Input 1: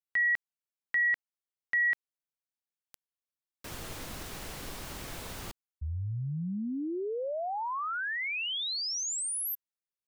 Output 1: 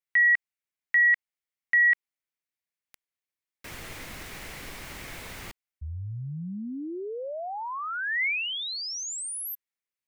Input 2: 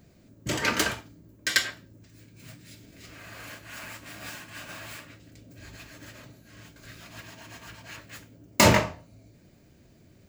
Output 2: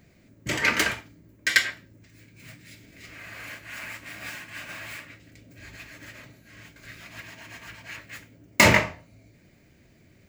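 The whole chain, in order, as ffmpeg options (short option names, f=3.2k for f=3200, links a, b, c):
-af "equalizer=f=2.1k:t=o:w=0.7:g=9,volume=-1dB"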